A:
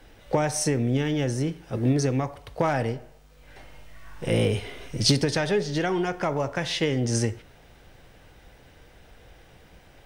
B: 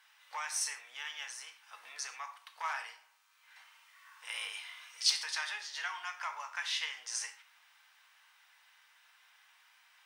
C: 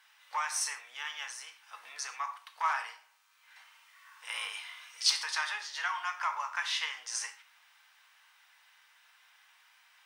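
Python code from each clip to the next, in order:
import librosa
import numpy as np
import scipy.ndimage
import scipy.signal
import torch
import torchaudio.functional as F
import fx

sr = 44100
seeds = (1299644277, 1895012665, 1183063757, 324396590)

y1 = scipy.signal.sosfilt(scipy.signal.cheby1(4, 1.0, 990.0, 'highpass', fs=sr, output='sos'), x)
y1 = fx.rev_gated(y1, sr, seeds[0], gate_ms=150, shape='falling', drr_db=5.5)
y1 = y1 * 10.0 ** (-6.0 / 20.0)
y2 = fx.dynamic_eq(y1, sr, hz=1100.0, q=1.5, threshold_db=-54.0, ratio=4.0, max_db=7)
y2 = y2 * 10.0 ** (1.5 / 20.0)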